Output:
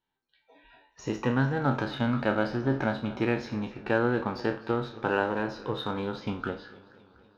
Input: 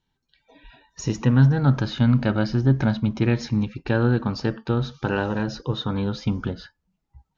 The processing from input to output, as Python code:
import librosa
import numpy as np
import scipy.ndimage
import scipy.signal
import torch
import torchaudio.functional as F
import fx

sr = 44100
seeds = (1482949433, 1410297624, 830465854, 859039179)

p1 = fx.spec_trails(x, sr, decay_s=0.37)
p2 = fx.high_shelf(p1, sr, hz=5000.0, db=-11.0)
p3 = fx.backlash(p2, sr, play_db=-26.0)
p4 = p2 + F.gain(torch.from_numpy(p3), -3.5).numpy()
p5 = fx.bass_treble(p4, sr, bass_db=-15, treble_db=-6)
p6 = p5 + fx.echo_single(p5, sr, ms=256, db=-22.0, dry=0)
p7 = fx.echo_warbled(p6, sr, ms=241, feedback_pct=70, rate_hz=2.8, cents=138, wet_db=-22)
y = F.gain(torch.from_numpy(p7), -4.0).numpy()